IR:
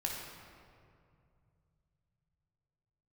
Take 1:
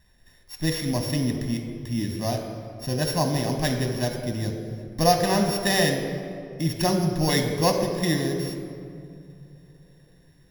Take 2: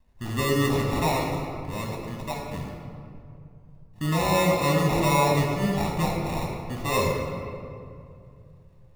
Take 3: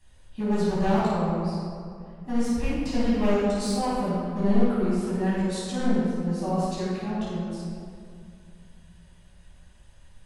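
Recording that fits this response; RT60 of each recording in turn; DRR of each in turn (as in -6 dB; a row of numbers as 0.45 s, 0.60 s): 2; 2.5 s, 2.4 s, 2.4 s; 4.0 dB, -1.5 dB, -9.5 dB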